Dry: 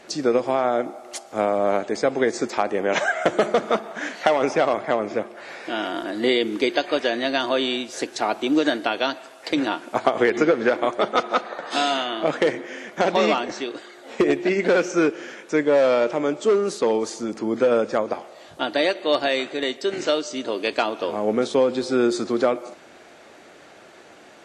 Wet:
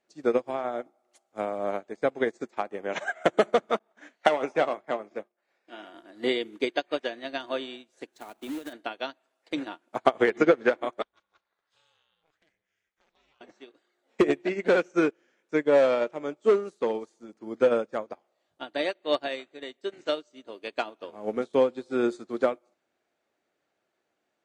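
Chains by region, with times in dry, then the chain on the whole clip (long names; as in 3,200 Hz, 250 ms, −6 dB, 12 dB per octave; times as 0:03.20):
0:03.79–0:05.95: high-pass filter 160 Hz + downward expander −33 dBFS + double-tracking delay 20 ms −12.5 dB
0:08.13–0:08.73: parametric band 250 Hz +5.5 dB 0.27 octaves + downward compressor 4 to 1, threshold −21 dBFS + log-companded quantiser 4 bits
0:11.02–0:13.41: guitar amp tone stack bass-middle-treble 5-5-5 + ring modulation 160 Hz
whole clip: dynamic equaliser 5,100 Hz, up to −6 dB, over −49 dBFS, Q 3.2; expander for the loud parts 2.5 to 1, over −35 dBFS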